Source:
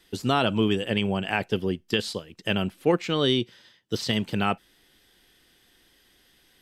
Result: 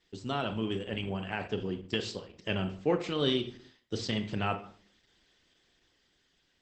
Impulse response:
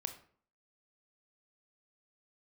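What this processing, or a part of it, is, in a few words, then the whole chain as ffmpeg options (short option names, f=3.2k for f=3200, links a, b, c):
speakerphone in a meeting room: -filter_complex "[1:a]atrim=start_sample=2205[a];[0:a][a]afir=irnorm=-1:irlink=0,dynaudnorm=f=410:g=7:m=4.5dB,volume=-8.5dB" -ar 48000 -c:a libopus -b:a 12k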